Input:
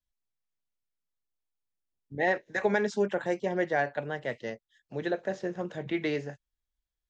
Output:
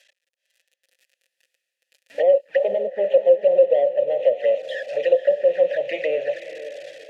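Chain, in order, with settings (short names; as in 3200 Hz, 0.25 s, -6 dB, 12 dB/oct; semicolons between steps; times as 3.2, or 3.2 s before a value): switching spikes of -28.5 dBFS; HPF 160 Hz 6 dB/oct; resonant low shelf 470 Hz -8.5 dB, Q 3; treble ducked by the level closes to 460 Hz, closed at -25 dBFS; sample leveller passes 3; AGC gain up to 14.5 dB; envelope flanger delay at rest 6.3 ms, full sweep at -11 dBFS; vowel filter e; diffused feedback echo 0.496 s, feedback 41%, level -12 dB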